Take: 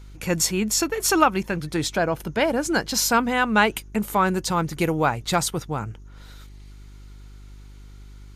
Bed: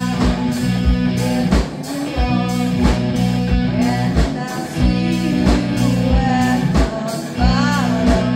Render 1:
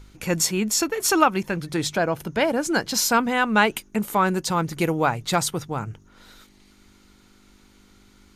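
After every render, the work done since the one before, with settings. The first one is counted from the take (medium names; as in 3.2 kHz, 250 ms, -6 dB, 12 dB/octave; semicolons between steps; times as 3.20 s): de-hum 50 Hz, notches 3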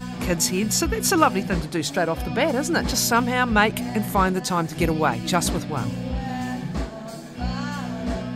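add bed -13 dB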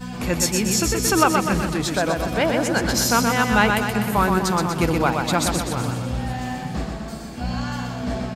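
on a send: feedback delay 124 ms, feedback 56%, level -4.5 dB; on the sum: modulated delay 424 ms, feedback 52%, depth 153 cents, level -19 dB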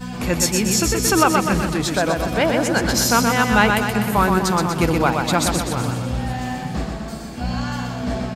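trim +2 dB; peak limiter -1 dBFS, peak gain reduction 1.5 dB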